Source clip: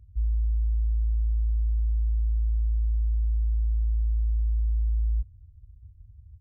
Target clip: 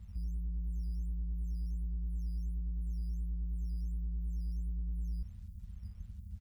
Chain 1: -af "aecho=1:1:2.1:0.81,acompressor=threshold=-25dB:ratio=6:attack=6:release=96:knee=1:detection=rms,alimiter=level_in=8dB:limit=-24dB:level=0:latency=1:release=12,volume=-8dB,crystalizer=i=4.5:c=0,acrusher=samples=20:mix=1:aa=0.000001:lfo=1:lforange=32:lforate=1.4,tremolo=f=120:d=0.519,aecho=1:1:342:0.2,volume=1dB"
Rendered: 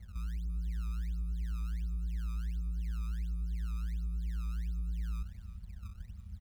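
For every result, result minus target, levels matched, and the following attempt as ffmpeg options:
sample-and-hold swept by an LFO: distortion +13 dB; echo-to-direct +11.5 dB
-af "aecho=1:1:2.1:0.81,acompressor=threshold=-25dB:ratio=6:attack=6:release=96:knee=1:detection=rms,alimiter=level_in=8dB:limit=-24dB:level=0:latency=1:release=12,volume=-8dB,crystalizer=i=4.5:c=0,acrusher=samples=5:mix=1:aa=0.000001:lfo=1:lforange=8:lforate=1.4,tremolo=f=120:d=0.519,aecho=1:1:342:0.2,volume=1dB"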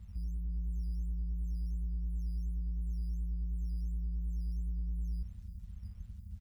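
echo-to-direct +11.5 dB
-af "aecho=1:1:2.1:0.81,acompressor=threshold=-25dB:ratio=6:attack=6:release=96:knee=1:detection=rms,alimiter=level_in=8dB:limit=-24dB:level=0:latency=1:release=12,volume=-8dB,crystalizer=i=4.5:c=0,acrusher=samples=5:mix=1:aa=0.000001:lfo=1:lforange=8:lforate=1.4,tremolo=f=120:d=0.519,aecho=1:1:342:0.0531,volume=1dB"

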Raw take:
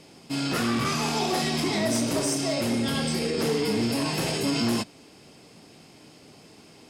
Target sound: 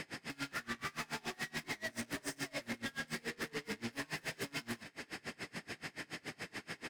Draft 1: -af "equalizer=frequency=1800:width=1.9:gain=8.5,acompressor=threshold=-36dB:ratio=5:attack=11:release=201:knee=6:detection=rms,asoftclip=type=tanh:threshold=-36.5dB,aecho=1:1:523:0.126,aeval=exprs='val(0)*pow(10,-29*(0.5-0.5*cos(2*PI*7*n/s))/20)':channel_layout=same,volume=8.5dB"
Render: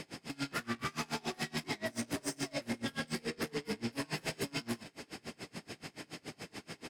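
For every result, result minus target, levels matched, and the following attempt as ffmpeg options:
soft clipping: distortion −6 dB; 2,000 Hz band −4.0 dB
-af "equalizer=frequency=1800:width=1.9:gain=8.5,acompressor=threshold=-36dB:ratio=5:attack=11:release=201:knee=6:detection=rms,asoftclip=type=tanh:threshold=-43dB,aecho=1:1:523:0.126,aeval=exprs='val(0)*pow(10,-29*(0.5-0.5*cos(2*PI*7*n/s))/20)':channel_layout=same,volume=8.5dB"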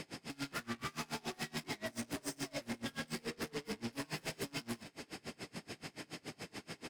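2,000 Hz band −4.0 dB
-af "equalizer=frequency=1800:width=1.9:gain=19,acompressor=threshold=-36dB:ratio=5:attack=11:release=201:knee=6:detection=rms,asoftclip=type=tanh:threshold=-43dB,aecho=1:1:523:0.126,aeval=exprs='val(0)*pow(10,-29*(0.5-0.5*cos(2*PI*7*n/s))/20)':channel_layout=same,volume=8.5dB"

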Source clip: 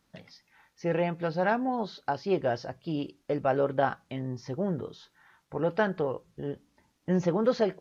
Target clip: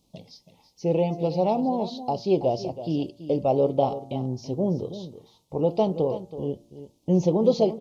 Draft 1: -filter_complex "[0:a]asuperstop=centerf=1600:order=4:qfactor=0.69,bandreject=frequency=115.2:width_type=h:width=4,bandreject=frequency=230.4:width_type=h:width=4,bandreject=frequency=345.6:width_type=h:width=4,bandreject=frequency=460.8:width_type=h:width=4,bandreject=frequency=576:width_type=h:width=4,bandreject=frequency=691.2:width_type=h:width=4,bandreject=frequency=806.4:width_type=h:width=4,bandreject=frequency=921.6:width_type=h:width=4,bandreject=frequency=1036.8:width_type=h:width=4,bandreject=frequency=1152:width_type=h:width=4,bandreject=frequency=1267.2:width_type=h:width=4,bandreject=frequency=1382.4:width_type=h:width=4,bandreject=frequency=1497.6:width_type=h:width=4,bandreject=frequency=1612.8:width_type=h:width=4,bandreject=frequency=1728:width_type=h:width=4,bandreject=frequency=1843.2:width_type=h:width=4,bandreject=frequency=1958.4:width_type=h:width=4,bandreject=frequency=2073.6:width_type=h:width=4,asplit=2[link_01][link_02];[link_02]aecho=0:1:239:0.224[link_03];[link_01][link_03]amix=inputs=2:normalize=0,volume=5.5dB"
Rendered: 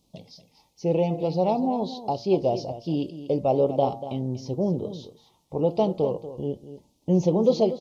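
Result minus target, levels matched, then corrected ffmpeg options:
echo 89 ms early
-filter_complex "[0:a]asuperstop=centerf=1600:order=4:qfactor=0.69,bandreject=frequency=115.2:width_type=h:width=4,bandreject=frequency=230.4:width_type=h:width=4,bandreject=frequency=345.6:width_type=h:width=4,bandreject=frequency=460.8:width_type=h:width=4,bandreject=frequency=576:width_type=h:width=4,bandreject=frequency=691.2:width_type=h:width=4,bandreject=frequency=806.4:width_type=h:width=4,bandreject=frequency=921.6:width_type=h:width=4,bandreject=frequency=1036.8:width_type=h:width=4,bandreject=frequency=1152:width_type=h:width=4,bandreject=frequency=1267.2:width_type=h:width=4,bandreject=frequency=1382.4:width_type=h:width=4,bandreject=frequency=1497.6:width_type=h:width=4,bandreject=frequency=1612.8:width_type=h:width=4,bandreject=frequency=1728:width_type=h:width=4,bandreject=frequency=1843.2:width_type=h:width=4,bandreject=frequency=1958.4:width_type=h:width=4,bandreject=frequency=2073.6:width_type=h:width=4,asplit=2[link_01][link_02];[link_02]aecho=0:1:328:0.224[link_03];[link_01][link_03]amix=inputs=2:normalize=0,volume=5.5dB"

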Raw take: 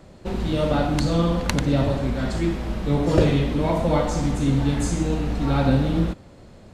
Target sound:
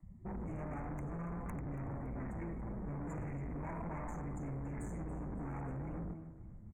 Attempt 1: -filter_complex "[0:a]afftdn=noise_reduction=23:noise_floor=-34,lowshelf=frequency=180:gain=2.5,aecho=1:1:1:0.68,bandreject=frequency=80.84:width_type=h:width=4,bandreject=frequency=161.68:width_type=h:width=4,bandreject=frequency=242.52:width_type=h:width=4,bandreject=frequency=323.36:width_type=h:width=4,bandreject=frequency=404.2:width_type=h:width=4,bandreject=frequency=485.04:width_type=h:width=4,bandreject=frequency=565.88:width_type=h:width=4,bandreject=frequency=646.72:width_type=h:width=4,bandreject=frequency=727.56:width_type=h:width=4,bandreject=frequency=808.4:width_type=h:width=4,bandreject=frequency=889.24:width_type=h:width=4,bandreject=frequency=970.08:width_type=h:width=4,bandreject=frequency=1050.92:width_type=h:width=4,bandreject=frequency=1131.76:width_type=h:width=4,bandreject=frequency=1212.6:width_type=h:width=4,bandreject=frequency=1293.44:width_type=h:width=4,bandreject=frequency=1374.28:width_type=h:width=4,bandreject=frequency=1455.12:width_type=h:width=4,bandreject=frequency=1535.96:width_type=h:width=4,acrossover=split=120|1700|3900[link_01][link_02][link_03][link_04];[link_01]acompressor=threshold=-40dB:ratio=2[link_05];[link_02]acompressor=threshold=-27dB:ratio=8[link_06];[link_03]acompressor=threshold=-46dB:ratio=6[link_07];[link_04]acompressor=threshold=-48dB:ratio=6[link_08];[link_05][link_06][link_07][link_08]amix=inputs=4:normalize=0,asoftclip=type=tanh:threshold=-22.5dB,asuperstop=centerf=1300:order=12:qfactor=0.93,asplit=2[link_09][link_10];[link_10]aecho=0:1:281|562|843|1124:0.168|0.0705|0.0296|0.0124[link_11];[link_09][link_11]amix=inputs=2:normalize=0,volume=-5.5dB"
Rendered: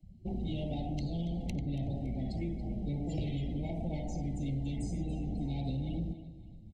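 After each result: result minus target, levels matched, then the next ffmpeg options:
1,000 Hz band −8.0 dB; soft clipping: distortion −10 dB
-filter_complex "[0:a]afftdn=noise_reduction=23:noise_floor=-34,lowshelf=frequency=180:gain=2.5,aecho=1:1:1:0.68,bandreject=frequency=80.84:width_type=h:width=4,bandreject=frequency=161.68:width_type=h:width=4,bandreject=frequency=242.52:width_type=h:width=4,bandreject=frequency=323.36:width_type=h:width=4,bandreject=frequency=404.2:width_type=h:width=4,bandreject=frequency=485.04:width_type=h:width=4,bandreject=frequency=565.88:width_type=h:width=4,bandreject=frequency=646.72:width_type=h:width=4,bandreject=frequency=727.56:width_type=h:width=4,bandreject=frequency=808.4:width_type=h:width=4,bandreject=frequency=889.24:width_type=h:width=4,bandreject=frequency=970.08:width_type=h:width=4,bandreject=frequency=1050.92:width_type=h:width=4,bandreject=frequency=1131.76:width_type=h:width=4,bandreject=frequency=1212.6:width_type=h:width=4,bandreject=frequency=1293.44:width_type=h:width=4,bandreject=frequency=1374.28:width_type=h:width=4,bandreject=frequency=1455.12:width_type=h:width=4,bandreject=frequency=1535.96:width_type=h:width=4,acrossover=split=120|1700|3900[link_01][link_02][link_03][link_04];[link_01]acompressor=threshold=-40dB:ratio=2[link_05];[link_02]acompressor=threshold=-27dB:ratio=8[link_06];[link_03]acompressor=threshold=-46dB:ratio=6[link_07];[link_04]acompressor=threshold=-48dB:ratio=6[link_08];[link_05][link_06][link_07][link_08]amix=inputs=4:normalize=0,asoftclip=type=tanh:threshold=-22.5dB,asuperstop=centerf=4000:order=12:qfactor=0.93,asplit=2[link_09][link_10];[link_10]aecho=0:1:281|562|843|1124:0.168|0.0705|0.0296|0.0124[link_11];[link_09][link_11]amix=inputs=2:normalize=0,volume=-5.5dB"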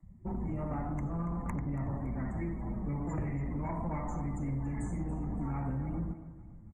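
soft clipping: distortion −10 dB
-filter_complex "[0:a]afftdn=noise_reduction=23:noise_floor=-34,lowshelf=frequency=180:gain=2.5,aecho=1:1:1:0.68,bandreject=frequency=80.84:width_type=h:width=4,bandreject=frequency=161.68:width_type=h:width=4,bandreject=frequency=242.52:width_type=h:width=4,bandreject=frequency=323.36:width_type=h:width=4,bandreject=frequency=404.2:width_type=h:width=4,bandreject=frequency=485.04:width_type=h:width=4,bandreject=frequency=565.88:width_type=h:width=4,bandreject=frequency=646.72:width_type=h:width=4,bandreject=frequency=727.56:width_type=h:width=4,bandreject=frequency=808.4:width_type=h:width=4,bandreject=frequency=889.24:width_type=h:width=4,bandreject=frequency=970.08:width_type=h:width=4,bandreject=frequency=1050.92:width_type=h:width=4,bandreject=frequency=1131.76:width_type=h:width=4,bandreject=frequency=1212.6:width_type=h:width=4,bandreject=frequency=1293.44:width_type=h:width=4,bandreject=frequency=1374.28:width_type=h:width=4,bandreject=frequency=1455.12:width_type=h:width=4,bandreject=frequency=1535.96:width_type=h:width=4,acrossover=split=120|1700|3900[link_01][link_02][link_03][link_04];[link_01]acompressor=threshold=-40dB:ratio=2[link_05];[link_02]acompressor=threshold=-27dB:ratio=8[link_06];[link_03]acompressor=threshold=-46dB:ratio=6[link_07];[link_04]acompressor=threshold=-48dB:ratio=6[link_08];[link_05][link_06][link_07][link_08]amix=inputs=4:normalize=0,asoftclip=type=tanh:threshold=-34dB,asuperstop=centerf=4000:order=12:qfactor=0.93,asplit=2[link_09][link_10];[link_10]aecho=0:1:281|562|843|1124:0.168|0.0705|0.0296|0.0124[link_11];[link_09][link_11]amix=inputs=2:normalize=0,volume=-5.5dB"

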